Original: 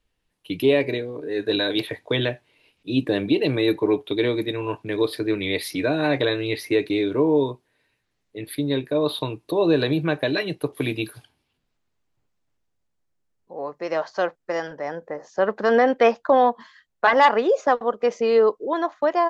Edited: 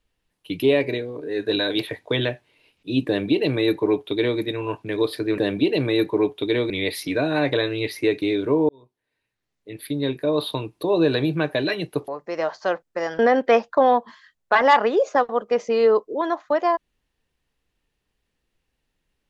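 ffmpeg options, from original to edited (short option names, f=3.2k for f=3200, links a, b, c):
-filter_complex "[0:a]asplit=6[a][b][c][d][e][f];[a]atrim=end=5.382[g];[b]atrim=start=3.068:end=4.392[h];[c]atrim=start=5.378:end=7.37,asetpts=PTS-STARTPTS,afade=t=out:st=1.988:d=0.004:c=hsin[i];[d]atrim=start=7.37:end=10.762,asetpts=PTS-STARTPTS,afade=t=in:d=1.47[j];[e]atrim=start=13.608:end=14.722[k];[f]atrim=start=15.708[l];[g][h]acrossfade=d=0.004:c1=hsin:c2=hsin[m];[i][j]concat=n=2:v=0:a=1[n];[m][n]acrossfade=d=0.004:c1=hsin:c2=hsin[o];[o][k]acrossfade=d=0.004:c1=hsin:c2=hsin[p];[p][l]acrossfade=d=0.004:c1=hsin:c2=hsin"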